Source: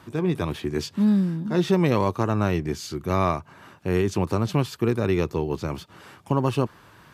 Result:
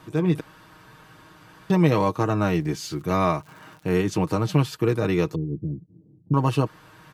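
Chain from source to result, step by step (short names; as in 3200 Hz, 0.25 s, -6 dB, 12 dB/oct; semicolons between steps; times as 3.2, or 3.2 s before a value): 0.4–1.7 room tone; 2.41–3.91 crackle 87/s -39 dBFS; 5.35–6.34 inverse Chebyshev low-pass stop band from 1400 Hz, stop band 70 dB; comb 6.4 ms, depth 58%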